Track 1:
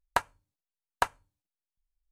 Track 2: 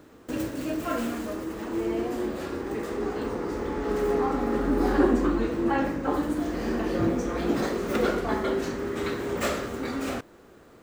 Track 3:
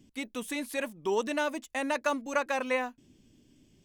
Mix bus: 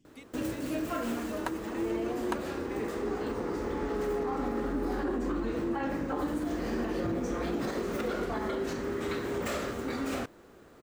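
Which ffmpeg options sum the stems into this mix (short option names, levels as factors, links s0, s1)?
-filter_complex "[0:a]adelay=1300,volume=0.335[s0];[1:a]alimiter=limit=0.0891:level=0:latency=1:release=77,adelay=50,volume=0.75[s1];[2:a]acompressor=threshold=0.01:ratio=3,volume=0.376[s2];[s0][s1][s2]amix=inputs=3:normalize=0"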